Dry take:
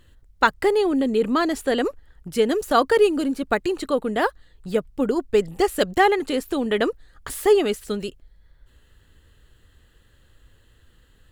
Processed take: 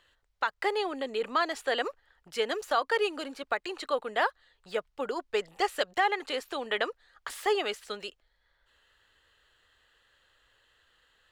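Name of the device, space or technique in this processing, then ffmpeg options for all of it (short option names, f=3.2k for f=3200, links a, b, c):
DJ mixer with the lows and highs turned down: -filter_complex "[0:a]acrossover=split=550 6200:gain=0.0794 1 0.224[a][b][c];[a][b][c]amix=inputs=3:normalize=0,alimiter=limit=-14dB:level=0:latency=1:release=216,volume=-1.5dB"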